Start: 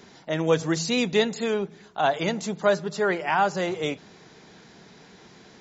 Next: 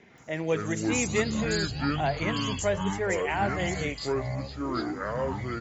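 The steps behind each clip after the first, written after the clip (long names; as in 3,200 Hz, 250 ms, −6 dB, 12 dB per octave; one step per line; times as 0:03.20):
drawn EQ curve 780 Hz 0 dB, 1,300 Hz −7 dB, 2,100 Hz +8 dB, 4,300 Hz −7 dB, 6,900 Hz +11 dB
multiband delay without the direct sound lows, highs 180 ms, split 4,200 Hz
delay with pitch and tempo change per echo 100 ms, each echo −7 semitones, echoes 3
level −6 dB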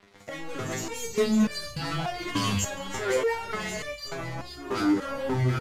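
leveller curve on the samples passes 5
downsampling to 32,000 Hz
step-sequenced resonator 3.4 Hz 100–590 Hz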